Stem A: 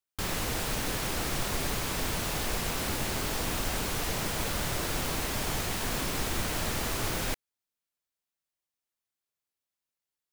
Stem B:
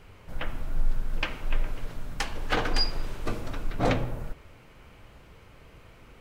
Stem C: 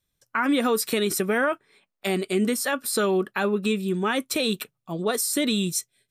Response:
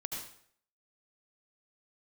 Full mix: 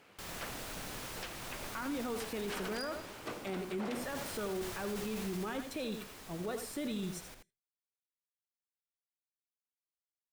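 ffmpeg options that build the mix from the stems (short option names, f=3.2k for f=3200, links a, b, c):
-filter_complex "[0:a]volume=0.5dB,afade=t=out:st=2.75:d=0.26:silence=0.266073,afade=t=in:st=3.82:d=0.36:silence=0.237137,afade=t=out:st=5.21:d=0.36:silence=0.375837,asplit=2[a][b];[b]volume=-7dB[c];[1:a]aeval=exprs='abs(val(0))':c=same,highpass=150,volume=-3.5dB[d];[2:a]highshelf=f=2.5k:g=-11,adelay=1400,volume=-12dB,asplit=3[e][f][g];[f]volume=-15dB[h];[g]volume=-8.5dB[i];[a][d]amix=inputs=2:normalize=0,lowshelf=f=220:g=-8,alimiter=level_in=3dB:limit=-24dB:level=0:latency=1:release=323,volume=-3dB,volume=0dB[j];[3:a]atrim=start_sample=2205[k];[h][k]afir=irnorm=-1:irlink=0[l];[c][i]amix=inputs=2:normalize=0,aecho=0:1:83:1[m];[e][j][l][m]amix=inputs=4:normalize=0,alimiter=level_in=6dB:limit=-24dB:level=0:latency=1:release=17,volume=-6dB"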